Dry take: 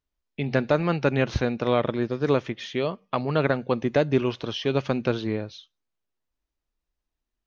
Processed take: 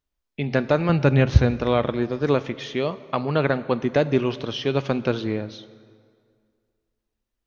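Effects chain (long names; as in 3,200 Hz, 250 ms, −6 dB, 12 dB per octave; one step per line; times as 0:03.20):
0:00.89–0:01.51: parametric band 79 Hz +13.5 dB 1.8 octaves
dense smooth reverb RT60 2.1 s, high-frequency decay 0.75×, DRR 15 dB
level +1.5 dB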